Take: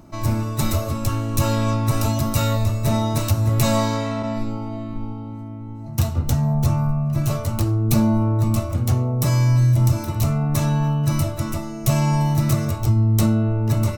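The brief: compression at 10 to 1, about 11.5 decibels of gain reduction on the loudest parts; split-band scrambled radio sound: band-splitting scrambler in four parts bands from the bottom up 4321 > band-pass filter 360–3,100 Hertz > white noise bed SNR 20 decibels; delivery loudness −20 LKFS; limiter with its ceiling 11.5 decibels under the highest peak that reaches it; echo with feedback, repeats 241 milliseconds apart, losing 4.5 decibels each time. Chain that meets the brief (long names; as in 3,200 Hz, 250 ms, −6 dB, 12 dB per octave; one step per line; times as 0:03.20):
downward compressor 10 to 1, threshold −25 dBFS
brickwall limiter −23.5 dBFS
repeating echo 241 ms, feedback 60%, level −4.5 dB
band-splitting scrambler in four parts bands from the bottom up 4321
band-pass filter 360–3,100 Hz
white noise bed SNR 20 dB
level +13.5 dB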